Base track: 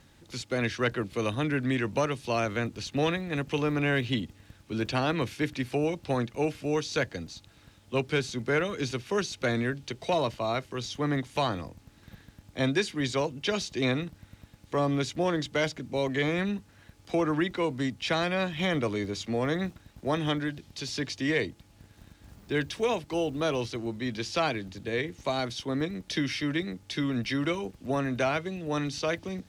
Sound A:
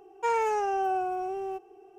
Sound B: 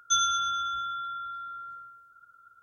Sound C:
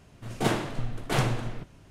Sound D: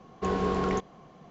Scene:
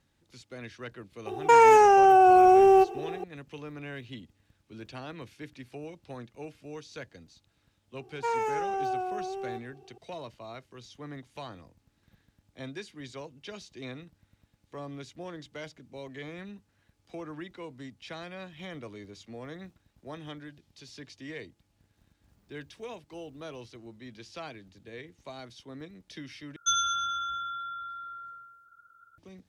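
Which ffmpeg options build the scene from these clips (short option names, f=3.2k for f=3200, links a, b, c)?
-filter_complex "[1:a]asplit=2[a][b];[0:a]volume=-14dB[c];[a]alimiter=level_in=26dB:limit=-1dB:release=50:level=0:latency=1[d];[c]asplit=2[e][f];[e]atrim=end=26.564[g];[2:a]atrim=end=2.62,asetpts=PTS-STARTPTS,volume=-2dB[h];[f]atrim=start=29.176[i];[d]atrim=end=1.98,asetpts=PTS-STARTPTS,volume=-9.5dB,afade=t=in:d=0.004:c=hsin,afade=t=out:st=1.976:d=0.004:c=hsin,adelay=1260[j];[b]atrim=end=1.98,asetpts=PTS-STARTPTS,volume=-3dB,afade=t=in:d=0.004:c=hsin,afade=t=out:st=1.976:d=0.004:c=hsin,adelay=8000[k];[g][h]acrossfade=d=0.004:c1=hsin:c2=hsin[l];[l][i]acrossfade=d=0.004:c1=hsin:c2=hsin[m];[m][j][k]amix=inputs=3:normalize=0"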